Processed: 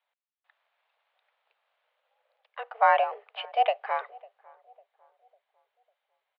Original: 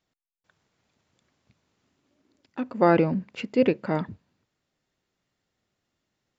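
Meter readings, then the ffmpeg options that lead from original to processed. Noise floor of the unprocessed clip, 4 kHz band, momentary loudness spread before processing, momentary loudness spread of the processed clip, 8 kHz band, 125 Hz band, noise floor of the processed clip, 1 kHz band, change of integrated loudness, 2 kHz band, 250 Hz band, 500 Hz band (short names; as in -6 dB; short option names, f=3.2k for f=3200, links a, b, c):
-82 dBFS, +3.5 dB, 16 LU, 20 LU, n/a, under -40 dB, under -85 dBFS, +6.0 dB, -2.0 dB, +2.5 dB, under -40 dB, -6.0 dB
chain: -filter_complex "[0:a]highpass=f=380:t=q:w=0.5412,highpass=f=380:t=q:w=1.307,lowpass=f=3.4k:t=q:w=0.5176,lowpass=f=3.4k:t=q:w=0.7071,lowpass=f=3.4k:t=q:w=1.932,afreqshift=230,asplit=2[a][b];[b]adelay=550,lowpass=f=870:p=1,volume=-22dB,asplit=2[c][d];[d]adelay=550,lowpass=f=870:p=1,volume=0.51,asplit=2[e][f];[f]adelay=550,lowpass=f=870:p=1,volume=0.51,asplit=2[g][h];[h]adelay=550,lowpass=f=870:p=1,volume=0.51[i];[a][c][e][g][i]amix=inputs=5:normalize=0"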